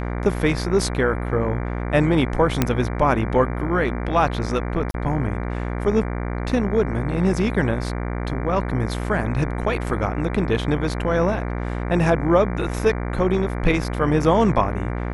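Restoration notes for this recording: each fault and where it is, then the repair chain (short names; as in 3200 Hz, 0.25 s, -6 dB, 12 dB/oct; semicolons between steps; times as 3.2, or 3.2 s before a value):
buzz 60 Hz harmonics 39 -26 dBFS
2.62 pop -3 dBFS
4.91–4.94 gap 32 ms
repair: de-click; de-hum 60 Hz, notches 39; interpolate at 4.91, 32 ms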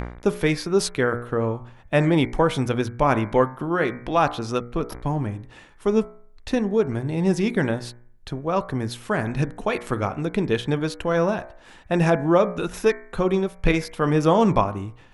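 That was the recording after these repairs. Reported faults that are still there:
2.62 pop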